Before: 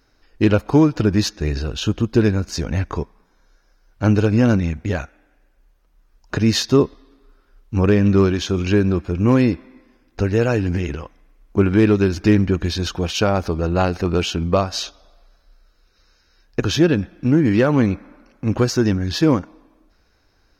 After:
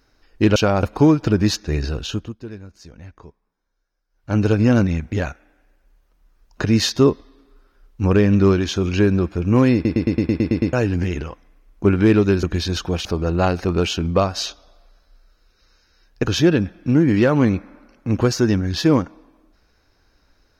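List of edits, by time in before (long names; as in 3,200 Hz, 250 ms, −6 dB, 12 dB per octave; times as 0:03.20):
0:01.68–0:04.24: duck −18.5 dB, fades 0.42 s
0:09.47: stutter in place 0.11 s, 9 plays
0:12.16–0:12.53: remove
0:13.15–0:13.42: move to 0:00.56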